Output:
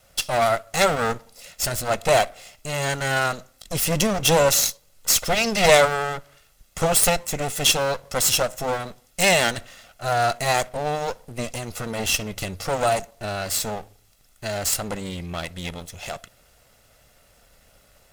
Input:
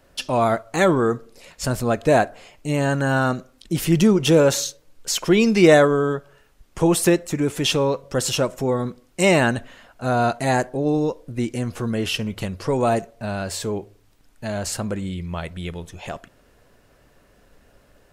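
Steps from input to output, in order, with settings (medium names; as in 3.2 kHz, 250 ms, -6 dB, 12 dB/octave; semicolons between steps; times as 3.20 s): comb filter that takes the minimum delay 1.5 ms; treble shelf 3 kHz +11 dB; trim -1.5 dB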